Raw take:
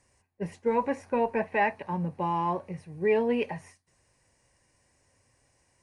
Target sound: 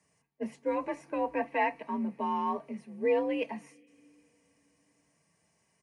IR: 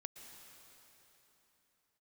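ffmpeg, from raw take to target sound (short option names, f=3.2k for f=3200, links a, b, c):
-filter_complex "[0:a]asplit=2[a][b];[b]asplit=3[c][d][e];[c]bandpass=f=270:t=q:w=8,volume=0dB[f];[d]bandpass=f=2.29k:t=q:w=8,volume=-6dB[g];[e]bandpass=f=3.01k:t=q:w=8,volume=-9dB[h];[f][g][h]amix=inputs=3:normalize=0[i];[1:a]atrim=start_sample=2205[j];[i][j]afir=irnorm=-1:irlink=0,volume=-2dB[k];[a][k]amix=inputs=2:normalize=0,afreqshift=52,aecho=1:1:4.4:0.45,volume=-5dB"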